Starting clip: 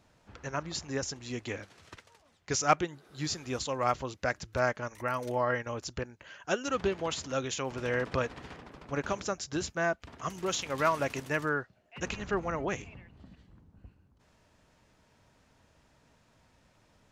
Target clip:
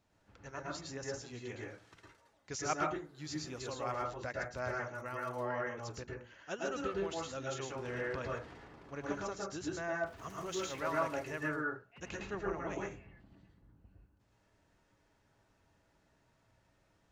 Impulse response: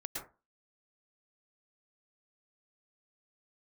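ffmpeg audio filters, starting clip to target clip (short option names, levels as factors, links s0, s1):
-filter_complex "[0:a]asettb=1/sr,asplit=3[s0][s1][s2];[s0]atrim=end=10.064[s3];[s1]atrim=start=10.06:end=10.81,asetpts=PTS-STARTPTS,afade=t=in:d=0.004:c=qsin,afade=t=out:st=0.746:d=0.004:c=qsin,aeval=exprs='val(0)+0.5*0.00473*sgn(val(0))':c=same[s4];[s2]atrim=start=10.806[s5];[s3][s4]acrossfade=d=0.004:c1=hsin:c2=qsin[s6];[s6][s5]acrossfade=d=0.004:c1=qsin:c2=hsin[s7];[1:a]atrim=start_sample=2205[s8];[s7][s8]afir=irnorm=-1:irlink=0,volume=0.447"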